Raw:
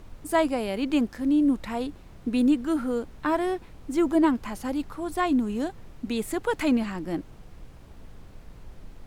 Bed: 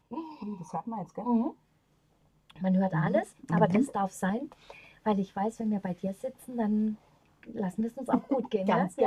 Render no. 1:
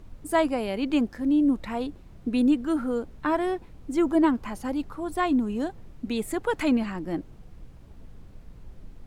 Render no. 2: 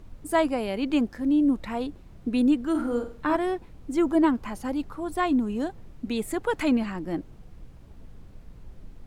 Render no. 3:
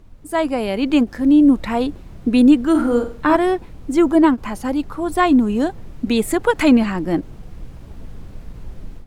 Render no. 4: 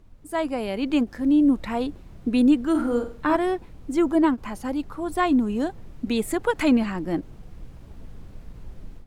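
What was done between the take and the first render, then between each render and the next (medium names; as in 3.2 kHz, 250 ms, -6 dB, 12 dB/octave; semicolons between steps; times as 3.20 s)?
noise reduction 6 dB, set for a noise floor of -48 dBFS
2.70–3.36 s: flutter echo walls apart 7.8 m, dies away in 0.4 s
level rider gain up to 11.5 dB; endings held to a fixed fall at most 470 dB/s
trim -6.5 dB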